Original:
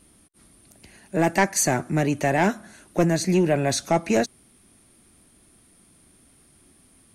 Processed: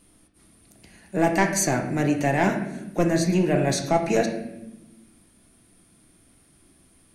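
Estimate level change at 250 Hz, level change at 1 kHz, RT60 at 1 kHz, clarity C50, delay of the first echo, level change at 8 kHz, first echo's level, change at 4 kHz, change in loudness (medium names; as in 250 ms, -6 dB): +0.5 dB, -0.5 dB, 0.75 s, 7.0 dB, no echo, -2.0 dB, no echo, -1.5 dB, -0.5 dB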